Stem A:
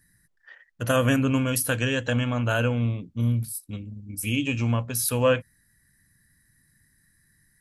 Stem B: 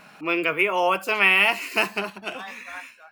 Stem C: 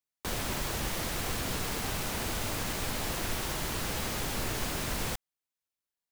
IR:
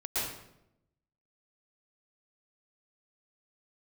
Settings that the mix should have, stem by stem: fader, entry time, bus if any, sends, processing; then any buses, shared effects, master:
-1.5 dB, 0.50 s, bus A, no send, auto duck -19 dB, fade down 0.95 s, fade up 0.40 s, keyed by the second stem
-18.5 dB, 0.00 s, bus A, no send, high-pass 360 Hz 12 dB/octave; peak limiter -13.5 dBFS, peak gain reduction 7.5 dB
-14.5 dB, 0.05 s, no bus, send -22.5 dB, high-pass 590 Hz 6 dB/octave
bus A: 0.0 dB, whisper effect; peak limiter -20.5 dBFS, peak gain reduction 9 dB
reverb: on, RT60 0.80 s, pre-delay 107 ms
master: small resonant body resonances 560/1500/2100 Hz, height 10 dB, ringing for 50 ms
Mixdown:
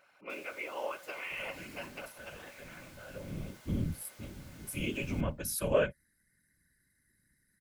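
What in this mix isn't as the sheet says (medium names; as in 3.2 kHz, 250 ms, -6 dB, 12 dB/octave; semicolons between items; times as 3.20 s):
stem A -1.5 dB -> -10.0 dB; stem C -14.5 dB -> -22.5 dB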